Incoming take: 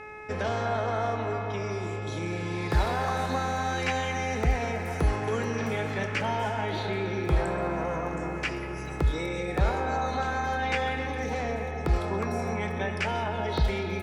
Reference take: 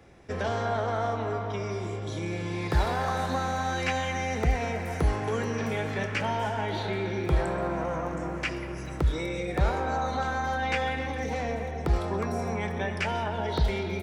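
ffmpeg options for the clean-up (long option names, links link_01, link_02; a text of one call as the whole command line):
ffmpeg -i in.wav -af "bandreject=frequency=425.6:width_type=h:width=4,bandreject=frequency=851.2:width_type=h:width=4,bandreject=frequency=1276.8:width_type=h:width=4,bandreject=frequency=1702.4:width_type=h:width=4,bandreject=frequency=2128:width_type=h:width=4,bandreject=frequency=2553.6:width_type=h:width=4" out.wav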